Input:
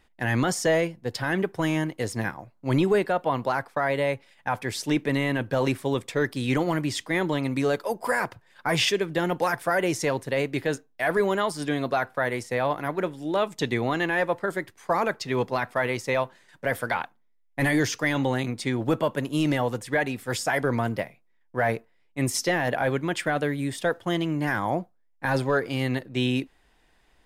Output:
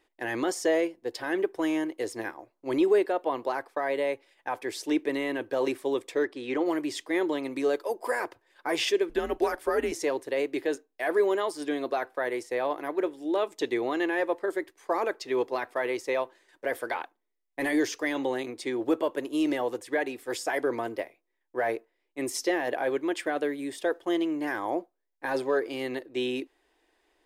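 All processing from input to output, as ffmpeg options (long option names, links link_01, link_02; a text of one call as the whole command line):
ffmpeg -i in.wav -filter_complex "[0:a]asettb=1/sr,asplit=3[link_01][link_02][link_03];[link_01]atrim=end=6.234[link_04];[link_02]atrim=start=6.23:end=6.66,asetpts=PTS-STARTPTS,afade=type=in:duration=0.004:curve=qsin,afade=type=out:start_time=0.426:duration=0.004:curve=qsin,lowpass=8800,bass=frequency=250:gain=-4,treble=frequency=4000:gain=-10,asoftclip=type=hard:threshold=-15dB[link_05];[link_03]atrim=start=6.656[link_06];[link_04][link_05]acrossfade=duration=0.004:curve1=hsin:curve2=qsin[link_07];[link_07][link_06]acrossfade=duration=0.004:curve1=qsin:curve2=hsin,asettb=1/sr,asplit=3[link_08][link_09][link_10];[link_08]atrim=end=9.094[link_11];[link_09]atrim=start=9.09:end=9.92,asetpts=PTS-STARTPTS,afade=type=in:duration=0.004:curve=qsin,afade=type=out:start_time=0.826:duration=0.004:curve=qsin,bass=frequency=250:gain=5,treble=frequency=4000:gain=-1,afreqshift=-130[link_12];[link_10]atrim=start=9.916[link_13];[link_11][link_12]acrossfade=duration=0.004:curve1=hsin:curve2=qsin[link_14];[link_14][link_13]acrossfade=duration=0.004:curve1=qsin:curve2=hsin,lowshelf=frequency=240:width_type=q:width=3:gain=-12,bandreject=frequency=1400:width=15,volume=-5.5dB" out.wav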